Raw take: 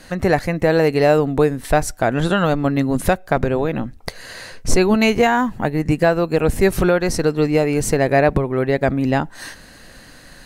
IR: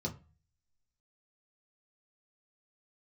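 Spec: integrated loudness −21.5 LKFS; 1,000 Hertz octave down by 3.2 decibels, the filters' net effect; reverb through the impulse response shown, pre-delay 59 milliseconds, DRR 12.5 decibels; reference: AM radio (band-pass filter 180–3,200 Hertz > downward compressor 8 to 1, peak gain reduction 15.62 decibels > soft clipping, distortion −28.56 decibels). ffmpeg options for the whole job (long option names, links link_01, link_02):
-filter_complex "[0:a]equalizer=frequency=1000:width_type=o:gain=-5,asplit=2[link_01][link_02];[1:a]atrim=start_sample=2205,adelay=59[link_03];[link_02][link_03]afir=irnorm=-1:irlink=0,volume=-14dB[link_04];[link_01][link_04]amix=inputs=2:normalize=0,highpass=180,lowpass=3200,acompressor=threshold=-26dB:ratio=8,asoftclip=threshold=-14.5dB,volume=9.5dB"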